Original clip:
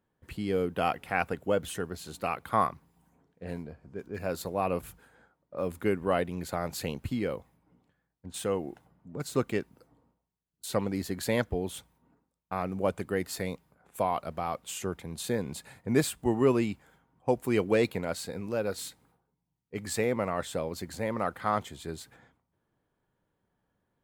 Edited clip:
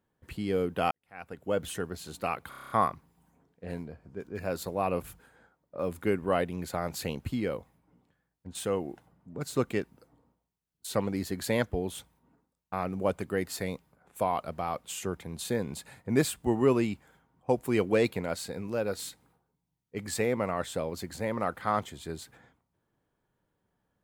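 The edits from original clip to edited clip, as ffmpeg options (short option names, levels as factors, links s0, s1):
-filter_complex "[0:a]asplit=9[s0][s1][s2][s3][s4][s5][s6][s7][s8];[s0]atrim=end=0.91,asetpts=PTS-STARTPTS,afade=t=out:st=0.906:d=0.004:c=hsin[s9];[s1]atrim=start=0.91:end=2.522,asetpts=PTS-STARTPTS,afade=t=in:d=0.7:c=qua[s10];[s2]atrim=start=2.488:end=2.522[s11];[s3]atrim=start=2.488:end=2.522[s12];[s4]atrim=start=2.488:end=2.522[s13];[s5]atrim=start=2.488:end=2.522[s14];[s6]atrim=start=2.488:end=2.522[s15];[s7]atrim=start=2.488:end=2.522[s16];[s8]atrim=start=2.488[s17];[s9][s10]concat=n=2:v=0:a=1[s18];[s18][s11]acrossfade=d=0.004:c1=hsin:c2=hsin[s19];[s19][s12]acrossfade=d=0.004:c1=hsin:c2=hsin[s20];[s20][s13]acrossfade=d=0.004:c1=hsin:c2=hsin[s21];[s21][s14]acrossfade=d=0.004:c1=hsin:c2=hsin[s22];[s22][s15]acrossfade=d=0.004:c1=hsin:c2=hsin[s23];[s23][s16]acrossfade=d=0.004:c1=hsin:c2=hsin[s24];[s24][s17]acrossfade=d=0.004:c1=hsin:c2=hsin"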